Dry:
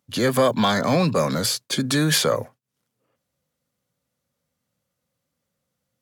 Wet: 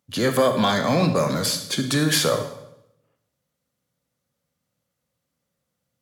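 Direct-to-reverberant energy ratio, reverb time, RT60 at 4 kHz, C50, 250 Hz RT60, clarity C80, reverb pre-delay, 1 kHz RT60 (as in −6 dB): 7.0 dB, 0.80 s, 0.70 s, 9.0 dB, 0.90 s, 11.5 dB, 33 ms, 0.75 s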